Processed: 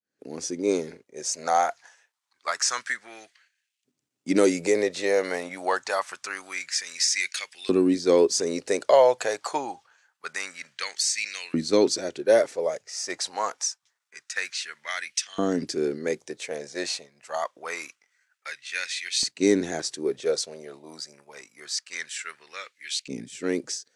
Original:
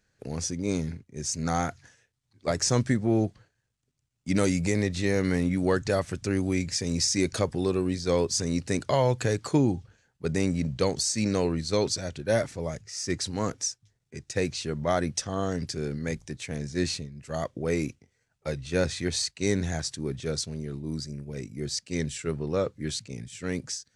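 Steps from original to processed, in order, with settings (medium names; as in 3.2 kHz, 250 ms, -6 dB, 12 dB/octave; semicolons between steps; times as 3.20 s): fade-in on the opening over 0.64 s; LFO high-pass saw up 0.26 Hz 250–2700 Hz; trim +2 dB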